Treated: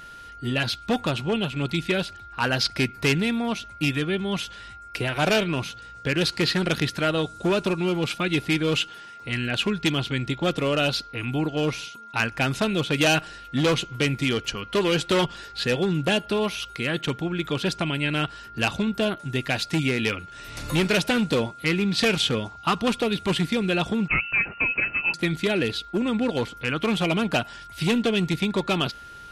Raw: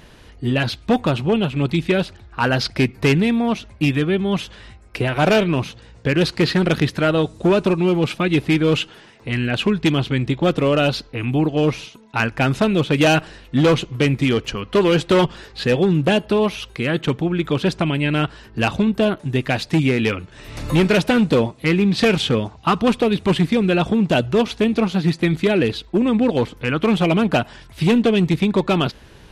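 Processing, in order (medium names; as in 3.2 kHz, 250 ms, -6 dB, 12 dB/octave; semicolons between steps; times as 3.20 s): whistle 1.4 kHz -36 dBFS; treble shelf 2.1 kHz +9.5 dB; 24.08–25.14 s: frequency inversion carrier 2.8 kHz; trim -7.5 dB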